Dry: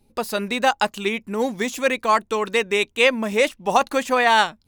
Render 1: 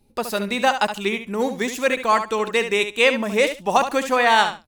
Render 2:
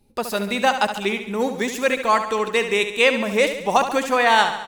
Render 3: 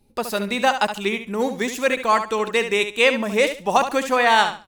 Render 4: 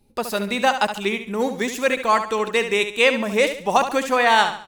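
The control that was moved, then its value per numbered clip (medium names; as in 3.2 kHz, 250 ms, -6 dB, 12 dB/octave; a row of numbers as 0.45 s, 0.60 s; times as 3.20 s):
feedback delay, feedback: 16%, 58%, 23%, 38%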